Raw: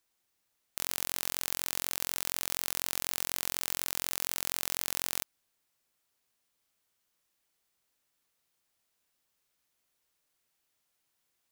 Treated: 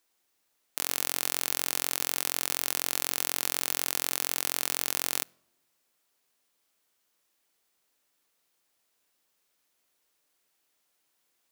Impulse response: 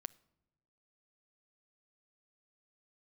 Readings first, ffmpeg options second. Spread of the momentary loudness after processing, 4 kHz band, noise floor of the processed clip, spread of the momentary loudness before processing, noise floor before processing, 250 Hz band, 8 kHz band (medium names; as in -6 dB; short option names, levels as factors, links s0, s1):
3 LU, +4.0 dB, -75 dBFS, 3 LU, -79 dBFS, +4.0 dB, +4.0 dB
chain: -filter_complex "[0:a]asplit=2[s0][s1];[s1]highpass=290[s2];[1:a]atrim=start_sample=2205,lowshelf=f=320:g=11.5[s3];[s2][s3]afir=irnorm=-1:irlink=0,volume=1.58[s4];[s0][s4]amix=inputs=2:normalize=0,volume=0.794"